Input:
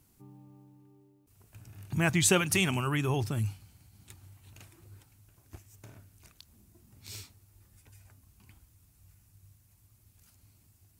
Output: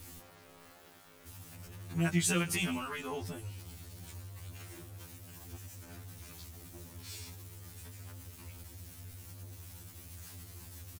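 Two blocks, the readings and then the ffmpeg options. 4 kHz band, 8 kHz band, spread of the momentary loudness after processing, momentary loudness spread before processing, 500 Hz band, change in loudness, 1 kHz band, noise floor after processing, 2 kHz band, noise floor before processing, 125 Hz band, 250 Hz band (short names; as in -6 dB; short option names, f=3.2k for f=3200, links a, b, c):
-5.5 dB, -5.5 dB, 19 LU, 21 LU, -7.5 dB, -11.5 dB, -6.0 dB, -57 dBFS, -6.0 dB, -65 dBFS, -5.5 dB, -3.5 dB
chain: -filter_complex "[0:a]aeval=exprs='val(0)+0.5*0.0133*sgn(val(0))':c=same,asplit=2[a][b];[b]adelay=122.4,volume=-21dB,highshelf=f=4k:g=-2.76[c];[a][c]amix=inputs=2:normalize=0,afftfilt=real='re*2*eq(mod(b,4),0)':imag='im*2*eq(mod(b,4),0)':win_size=2048:overlap=0.75,volume=-4.5dB"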